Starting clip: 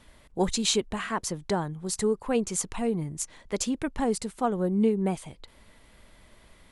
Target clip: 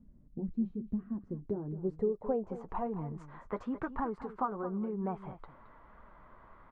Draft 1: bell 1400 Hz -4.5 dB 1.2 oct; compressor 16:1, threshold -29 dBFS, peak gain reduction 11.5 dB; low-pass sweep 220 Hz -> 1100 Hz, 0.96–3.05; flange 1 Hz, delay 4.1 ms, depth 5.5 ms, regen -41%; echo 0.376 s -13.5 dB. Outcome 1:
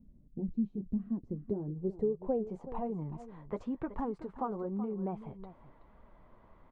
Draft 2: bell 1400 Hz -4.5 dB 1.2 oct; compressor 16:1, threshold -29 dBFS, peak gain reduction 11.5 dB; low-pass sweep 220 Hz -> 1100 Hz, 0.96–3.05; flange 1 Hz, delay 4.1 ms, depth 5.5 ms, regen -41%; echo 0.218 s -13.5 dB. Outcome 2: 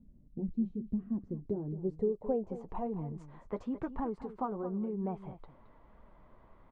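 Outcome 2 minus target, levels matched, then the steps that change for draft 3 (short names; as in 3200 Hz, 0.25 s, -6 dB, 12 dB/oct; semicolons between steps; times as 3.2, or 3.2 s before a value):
1000 Hz band -3.5 dB
change: bell 1400 Hz +6.5 dB 1.2 oct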